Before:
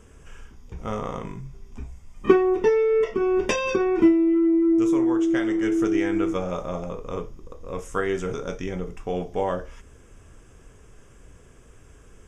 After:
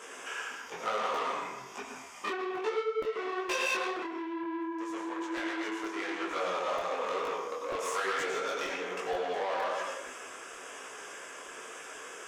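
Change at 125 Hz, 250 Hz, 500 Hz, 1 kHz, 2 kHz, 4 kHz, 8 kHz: below −20 dB, −17.5 dB, −11.0 dB, −0.5 dB, −0.5 dB, +2.0 dB, can't be measured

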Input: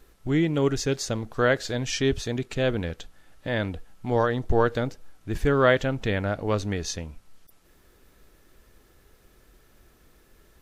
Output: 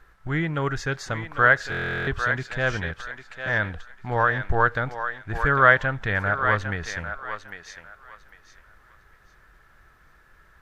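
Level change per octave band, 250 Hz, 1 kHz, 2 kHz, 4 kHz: −6.0, +7.0, +10.0, −4.0 decibels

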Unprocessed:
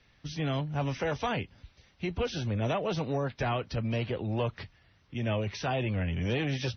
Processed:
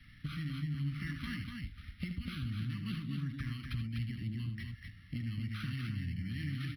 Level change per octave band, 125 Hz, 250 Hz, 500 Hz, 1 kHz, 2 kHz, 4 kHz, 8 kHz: −4.0 dB, −6.0 dB, below −30 dB, −21.0 dB, −8.0 dB, −8.5 dB, can't be measured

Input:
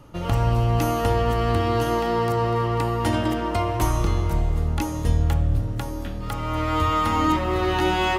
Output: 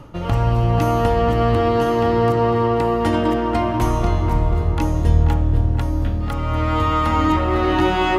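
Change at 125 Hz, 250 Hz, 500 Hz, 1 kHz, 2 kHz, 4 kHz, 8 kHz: +4.0, +5.5, +5.5, +3.5, +2.5, +0.5, −3.5 decibels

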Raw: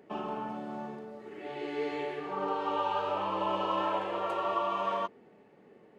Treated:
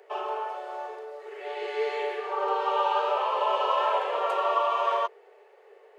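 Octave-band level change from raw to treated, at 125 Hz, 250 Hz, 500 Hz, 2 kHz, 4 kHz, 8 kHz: below −40 dB, below −10 dB, +5.5 dB, +6.0 dB, +6.0 dB, can't be measured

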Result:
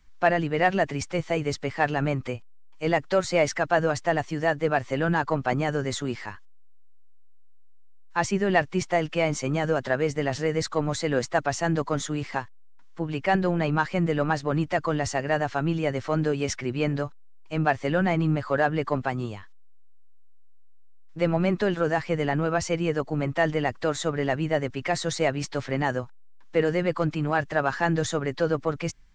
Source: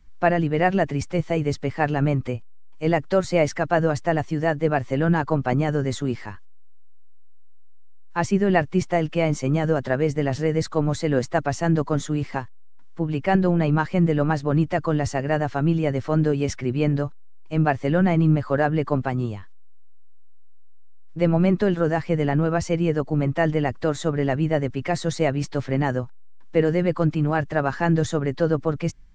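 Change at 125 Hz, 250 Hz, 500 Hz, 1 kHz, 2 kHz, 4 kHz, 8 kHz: −6.5, −5.5, −2.5, −1.0, +1.0, +2.0, +2.5 decibels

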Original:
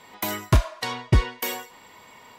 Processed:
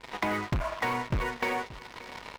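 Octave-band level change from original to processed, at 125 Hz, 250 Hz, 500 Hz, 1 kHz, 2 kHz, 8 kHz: −11.5, −4.0, −1.5, +0.5, +0.5, −12.5 decibels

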